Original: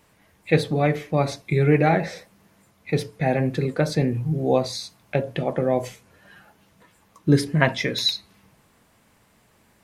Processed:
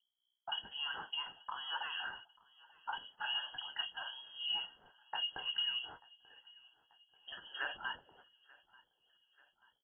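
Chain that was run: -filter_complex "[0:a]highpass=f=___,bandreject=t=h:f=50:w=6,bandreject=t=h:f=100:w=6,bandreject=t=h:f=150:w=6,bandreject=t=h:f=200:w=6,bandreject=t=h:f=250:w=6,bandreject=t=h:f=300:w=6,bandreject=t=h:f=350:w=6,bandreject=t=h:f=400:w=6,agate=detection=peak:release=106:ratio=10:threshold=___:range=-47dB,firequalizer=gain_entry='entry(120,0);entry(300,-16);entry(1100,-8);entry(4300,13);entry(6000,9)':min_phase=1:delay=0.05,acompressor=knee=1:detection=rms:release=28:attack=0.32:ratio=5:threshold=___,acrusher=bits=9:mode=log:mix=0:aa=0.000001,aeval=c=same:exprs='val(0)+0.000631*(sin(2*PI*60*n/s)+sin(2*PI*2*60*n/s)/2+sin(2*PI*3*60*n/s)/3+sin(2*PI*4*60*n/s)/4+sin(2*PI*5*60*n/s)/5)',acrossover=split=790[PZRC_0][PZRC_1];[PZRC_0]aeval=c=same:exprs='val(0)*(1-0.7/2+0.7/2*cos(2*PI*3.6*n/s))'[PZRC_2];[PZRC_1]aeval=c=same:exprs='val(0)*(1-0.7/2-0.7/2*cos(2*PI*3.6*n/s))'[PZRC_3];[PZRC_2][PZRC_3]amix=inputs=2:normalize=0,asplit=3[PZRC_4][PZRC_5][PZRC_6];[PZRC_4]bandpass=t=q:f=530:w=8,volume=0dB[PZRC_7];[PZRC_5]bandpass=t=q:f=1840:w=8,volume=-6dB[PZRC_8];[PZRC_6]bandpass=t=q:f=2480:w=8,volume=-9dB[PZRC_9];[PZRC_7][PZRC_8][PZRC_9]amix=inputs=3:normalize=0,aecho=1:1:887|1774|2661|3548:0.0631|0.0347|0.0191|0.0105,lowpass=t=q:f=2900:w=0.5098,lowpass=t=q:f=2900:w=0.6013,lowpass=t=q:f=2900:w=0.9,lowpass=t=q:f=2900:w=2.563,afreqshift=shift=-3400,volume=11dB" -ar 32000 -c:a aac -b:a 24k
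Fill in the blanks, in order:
160, -48dB, -29dB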